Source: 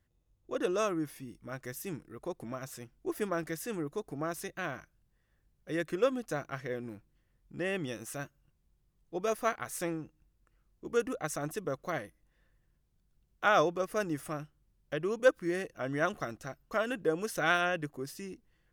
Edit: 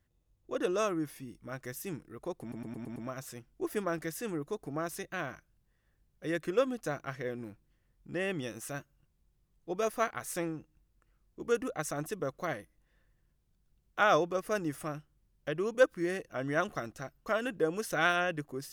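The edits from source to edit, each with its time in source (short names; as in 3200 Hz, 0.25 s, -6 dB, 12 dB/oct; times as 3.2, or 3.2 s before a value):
2.41 stutter 0.11 s, 6 plays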